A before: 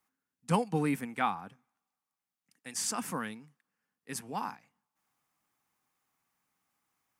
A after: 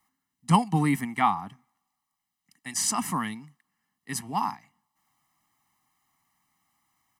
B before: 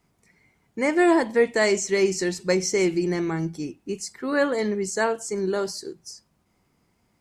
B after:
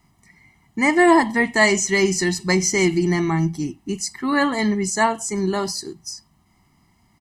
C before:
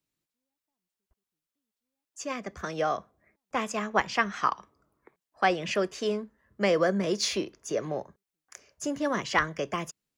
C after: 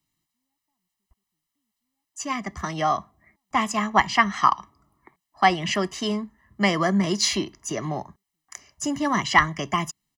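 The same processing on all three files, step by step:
comb 1 ms, depth 84%; trim +4.5 dB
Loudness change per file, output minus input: +7.0 LU, +4.5 LU, +6.0 LU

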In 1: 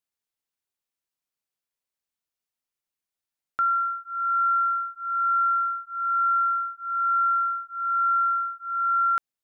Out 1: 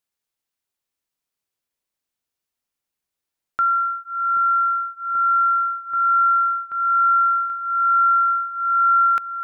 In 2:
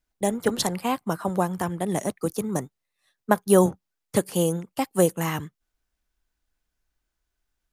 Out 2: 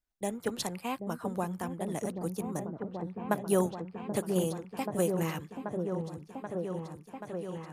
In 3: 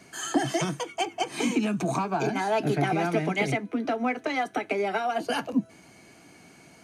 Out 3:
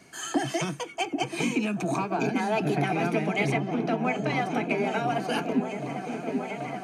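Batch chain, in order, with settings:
dynamic bell 2.5 kHz, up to +7 dB, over -53 dBFS, Q 6.7; delay with an opening low-pass 782 ms, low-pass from 400 Hz, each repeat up 1 oct, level -3 dB; peak normalisation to -12 dBFS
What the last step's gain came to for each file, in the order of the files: +4.0 dB, -9.5 dB, -2.0 dB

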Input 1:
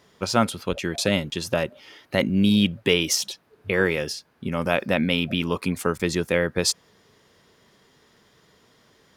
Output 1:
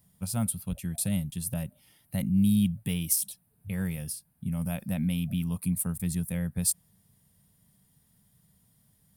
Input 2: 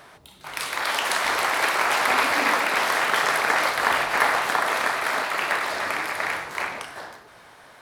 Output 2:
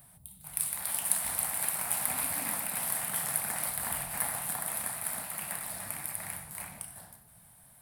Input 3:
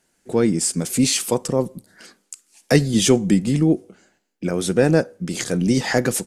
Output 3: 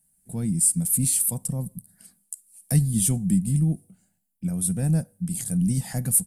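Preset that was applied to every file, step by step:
FFT filter 180 Hz 0 dB, 390 Hz -26 dB, 730 Hz -15 dB, 1.2 kHz -22 dB, 6.5 kHz -14 dB, 9.2 kHz +8 dB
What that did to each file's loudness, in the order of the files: -6.0 LU, -9.0 LU, -3.5 LU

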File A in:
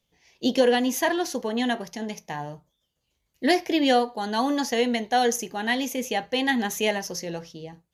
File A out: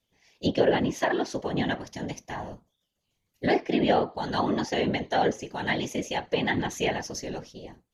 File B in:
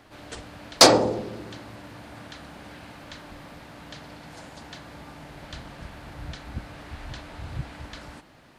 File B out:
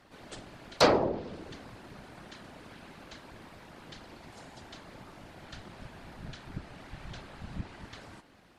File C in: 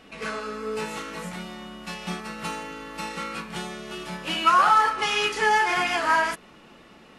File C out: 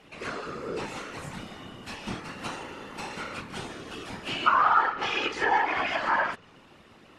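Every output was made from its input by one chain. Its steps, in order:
whisper effect; low-pass that closes with the level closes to 2.8 kHz, closed at -18.5 dBFS; peak normalisation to -9 dBFS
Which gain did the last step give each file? -2.5 dB, -6.0 dB, -3.5 dB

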